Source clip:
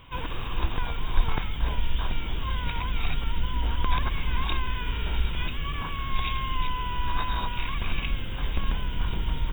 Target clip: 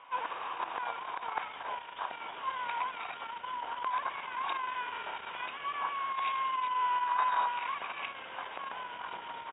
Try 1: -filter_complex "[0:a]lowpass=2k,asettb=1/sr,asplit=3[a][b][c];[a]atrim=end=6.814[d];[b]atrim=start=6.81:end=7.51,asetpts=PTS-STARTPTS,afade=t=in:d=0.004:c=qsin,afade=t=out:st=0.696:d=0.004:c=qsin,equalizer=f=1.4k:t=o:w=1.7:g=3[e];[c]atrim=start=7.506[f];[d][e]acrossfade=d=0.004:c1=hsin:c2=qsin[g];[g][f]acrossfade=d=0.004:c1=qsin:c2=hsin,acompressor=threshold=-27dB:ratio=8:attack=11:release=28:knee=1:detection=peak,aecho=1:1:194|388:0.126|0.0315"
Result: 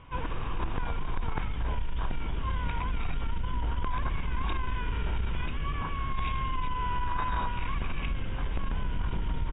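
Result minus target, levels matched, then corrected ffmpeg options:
1000 Hz band -5.0 dB
-filter_complex "[0:a]lowpass=2k,asettb=1/sr,asplit=3[a][b][c];[a]atrim=end=6.814[d];[b]atrim=start=6.81:end=7.51,asetpts=PTS-STARTPTS,afade=t=in:d=0.004:c=qsin,afade=t=out:st=0.696:d=0.004:c=qsin,equalizer=f=1.4k:t=o:w=1.7:g=3[e];[c]atrim=start=7.506[f];[d][e]acrossfade=d=0.004:c1=hsin:c2=qsin[g];[g][f]acrossfade=d=0.004:c1=qsin:c2=hsin,acompressor=threshold=-27dB:ratio=8:attack=11:release=28:knee=1:detection=peak,highpass=f=760:t=q:w=1.6,aecho=1:1:194|388:0.126|0.0315"

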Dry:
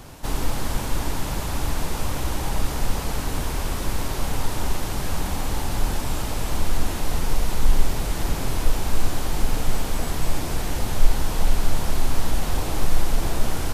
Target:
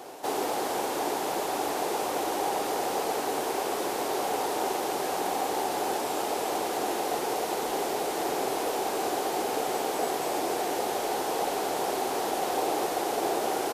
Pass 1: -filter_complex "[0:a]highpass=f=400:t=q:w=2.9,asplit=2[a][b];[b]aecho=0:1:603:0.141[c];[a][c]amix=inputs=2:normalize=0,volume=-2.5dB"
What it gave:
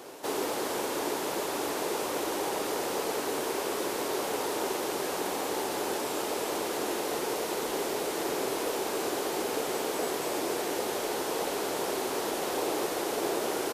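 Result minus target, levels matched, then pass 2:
1000 Hz band -3.5 dB
-filter_complex "[0:a]highpass=f=400:t=q:w=2.9,equalizer=f=760:t=o:w=0.35:g=9.5,asplit=2[a][b];[b]aecho=0:1:603:0.141[c];[a][c]amix=inputs=2:normalize=0,volume=-2.5dB"

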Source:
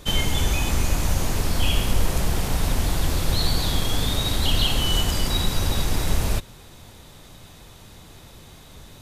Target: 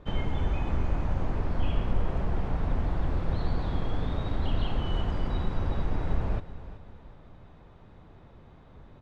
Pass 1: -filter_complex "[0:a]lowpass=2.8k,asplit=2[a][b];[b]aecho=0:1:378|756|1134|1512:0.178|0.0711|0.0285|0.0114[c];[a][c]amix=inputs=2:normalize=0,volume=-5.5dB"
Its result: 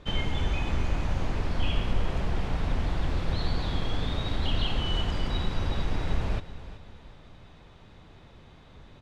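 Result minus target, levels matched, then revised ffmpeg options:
2000 Hz band +5.0 dB
-filter_complex "[0:a]lowpass=1.4k,asplit=2[a][b];[b]aecho=0:1:378|756|1134|1512:0.178|0.0711|0.0285|0.0114[c];[a][c]amix=inputs=2:normalize=0,volume=-5.5dB"

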